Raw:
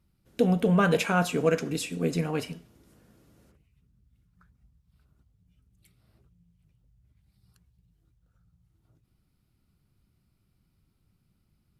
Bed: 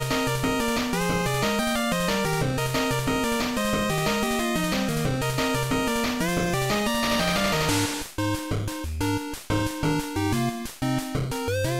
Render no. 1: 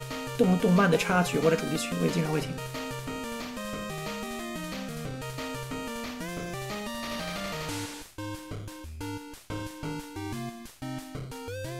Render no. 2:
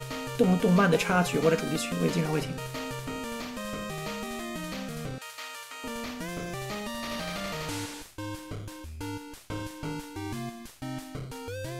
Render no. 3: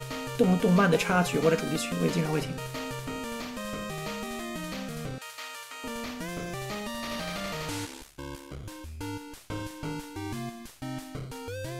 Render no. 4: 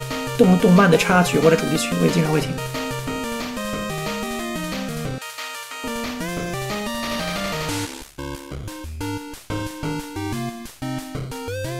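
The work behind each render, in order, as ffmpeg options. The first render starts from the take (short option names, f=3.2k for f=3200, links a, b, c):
-filter_complex "[1:a]volume=-11dB[a];[0:a][a]amix=inputs=2:normalize=0"
-filter_complex "[0:a]asettb=1/sr,asplit=3[a][b][c];[a]atrim=end=5.184[d];[b]atrim=start=5.18:end=5.84,asetpts=PTS-STARTPTS,afade=t=in:d=0.004:c=qsin,afade=t=out:st=0.656:d=0.004:c=qsin,highpass=1.1k[e];[c]atrim=start=5.836[f];[d][e]acrossfade=d=0.004:c1=hsin:c2=qsin[g];[g][f]acrossfade=d=0.004:c1=qsin:c2=hsin"
-filter_complex "[0:a]asplit=3[a][b][c];[a]afade=t=out:st=7.85:d=0.02[d];[b]aeval=exprs='val(0)*sin(2*PI*35*n/s)':c=same,afade=t=in:st=7.85:d=0.02,afade=t=out:st=8.63:d=0.02[e];[c]afade=t=in:st=8.63:d=0.02[f];[d][e][f]amix=inputs=3:normalize=0"
-af "volume=9dB,alimiter=limit=-2dB:level=0:latency=1"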